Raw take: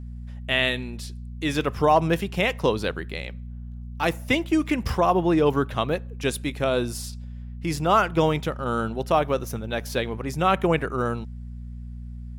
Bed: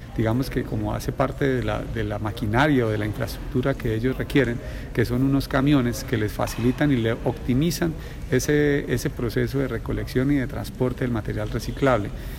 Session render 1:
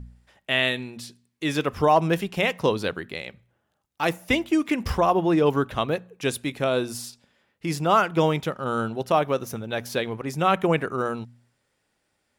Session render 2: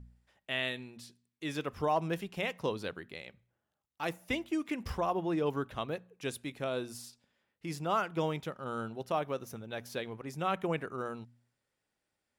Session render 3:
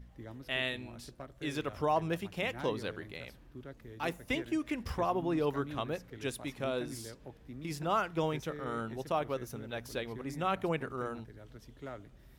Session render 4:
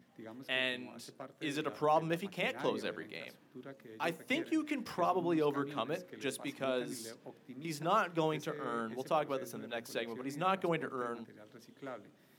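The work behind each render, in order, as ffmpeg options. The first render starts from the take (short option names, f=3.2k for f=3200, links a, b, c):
-af "bandreject=f=60:t=h:w=4,bandreject=f=120:t=h:w=4,bandreject=f=180:t=h:w=4,bandreject=f=240:t=h:w=4"
-af "volume=-11.5dB"
-filter_complex "[1:a]volume=-25dB[a];[0:a][a]amix=inputs=2:normalize=0"
-af "highpass=f=160:w=0.5412,highpass=f=160:w=1.3066,bandreject=f=60:t=h:w=6,bandreject=f=120:t=h:w=6,bandreject=f=180:t=h:w=6,bandreject=f=240:t=h:w=6,bandreject=f=300:t=h:w=6,bandreject=f=360:t=h:w=6,bandreject=f=420:t=h:w=6,bandreject=f=480:t=h:w=6,bandreject=f=540:t=h:w=6"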